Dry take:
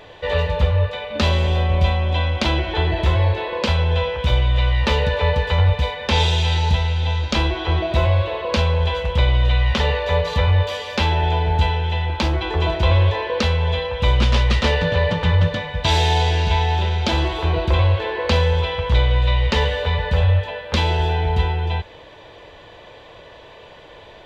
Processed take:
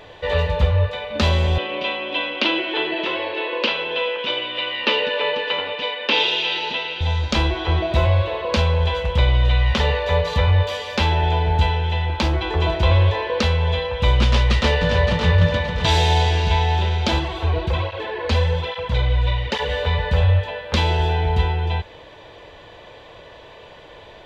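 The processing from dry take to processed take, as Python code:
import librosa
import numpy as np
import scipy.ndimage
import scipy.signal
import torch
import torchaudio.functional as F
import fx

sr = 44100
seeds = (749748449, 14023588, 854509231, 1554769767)

y = fx.cabinet(x, sr, low_hz=270.0, low_slope=24, high_hz=4900.0, hz=(290.0, 760.0, 2800.0), db=(7, -6, 9), at=(1.58, 7.01))
y = fx.echo_throw(y, sr, start_s=14.25, length_s=1.04, ms=570, feedback_pct=35, wet_db=-7.0)
y = fx.flanger_cancel(y, sr, hz=1.2, depth_ms=6.1, at=(17.18, 19.68), fade=0.02)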